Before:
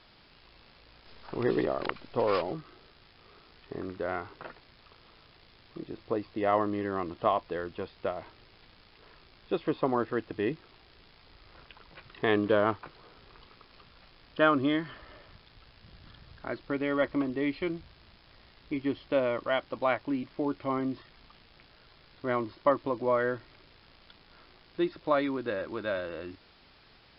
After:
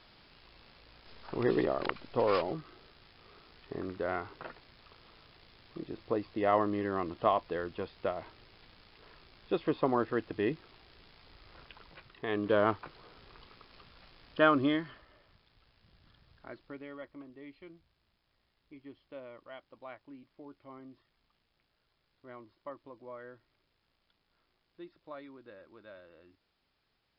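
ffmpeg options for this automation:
-af "volume=8dB,afade=t=out:st=11.85:d=0.41:silence=0.354813,afade=t=in:st=12.26:d=0.37:silence=0.354813,afade=t=out:st=14.66:d=0.41:silence=0.316228,afade=t=out:st=16.49:d=0.56:silence=0.375837"

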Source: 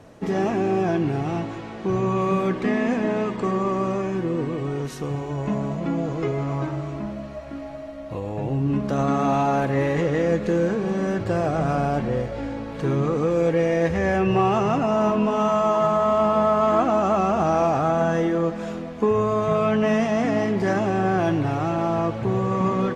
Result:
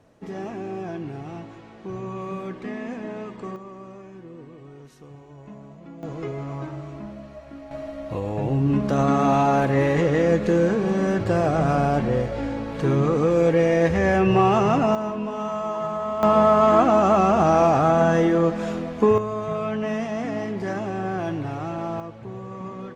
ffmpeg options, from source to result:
-af "asetnsamples=n=441:p=0,asendcmd='3.56 volume volume -17dB;6.03 volume volume -6dB;7.71 volume volume 2dB;14.95 volume volume -7.5dB;16.23 volume volume 3dB;19.18 volume volume -6dB;22 volume volume -13dB',volume=-10dB"

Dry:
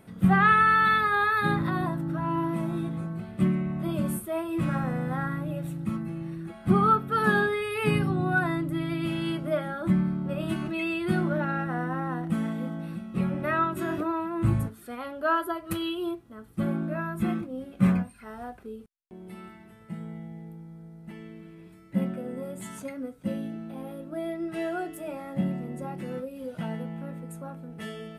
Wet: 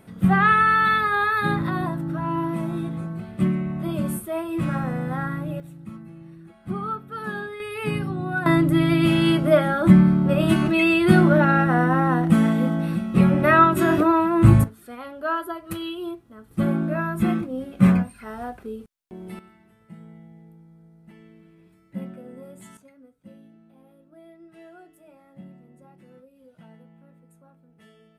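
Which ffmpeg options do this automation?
-af "asetnsamples=n=441:p=0,asendcmd='5.6 volume volume -8dB;7.6 volume volume -1.5dB;8.46 volume volume 11dB;14.64 volume volume -0.5dB;16.51 volume volume 6dB;19.39 volume volume -6dB;22.77 volume volume -16dB',volume=2.5dB"

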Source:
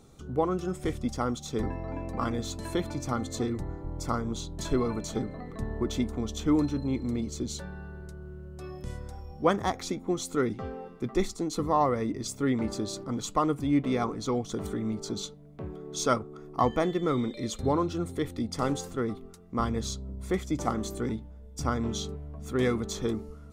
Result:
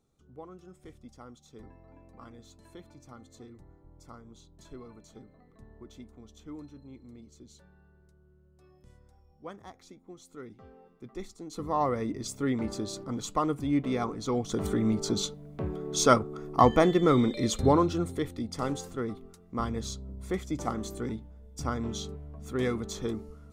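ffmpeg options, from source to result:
-af "volume=5dB,afade=t=in:st=10.21:d=1.23:silence=0.446684,afade=t=in:st=11.44:d=0.44:silence=0.316228,afade=t=in:st=14.24:d=0.56:silence=0.446684,afade=t=out:st=17.61:d=0.74:silence=0.398107"

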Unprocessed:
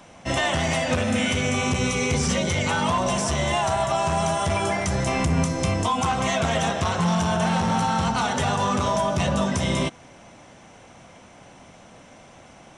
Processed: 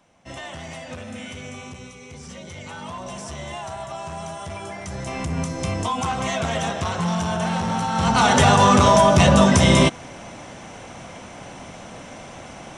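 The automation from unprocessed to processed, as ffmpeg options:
-af "volume=16dB,afade=t=out:st=1.49:d=0.5:silence=0.446684,afade=t=in:st=1.99:d=1.28:silence=0.334965,afade=t=in:st=4.74:d=1.09:silence=0.375837,afade=t=in:st=7.92:d=0.41:silence=0.298538"

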